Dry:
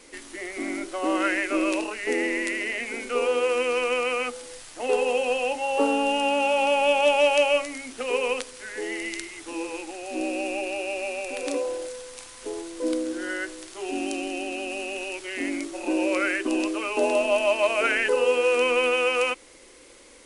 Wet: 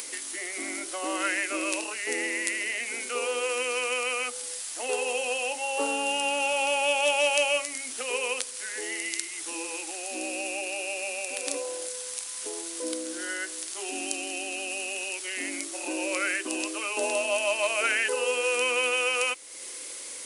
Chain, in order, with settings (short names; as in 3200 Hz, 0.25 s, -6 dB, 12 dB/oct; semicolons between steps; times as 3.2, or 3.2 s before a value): RIAA curve recording; upward compressor, threshold -25 dBFS; gain -4.5 dB